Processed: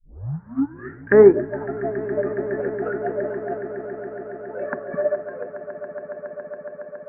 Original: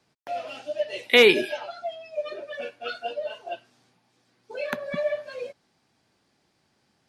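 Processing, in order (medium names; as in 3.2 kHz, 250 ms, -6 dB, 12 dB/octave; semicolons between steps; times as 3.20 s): tape start-up on the opening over 1.34 s; low-pass that closes with the level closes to 900 Hz, closed at -20 dBFS; elliptic low-pass 1.7 kHz, stop band 50 dB; echo with a slow build-up 139 ms, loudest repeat 8, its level -14 dB; upward expansion 1.5:1, over -35 dBFS; trim +8 dB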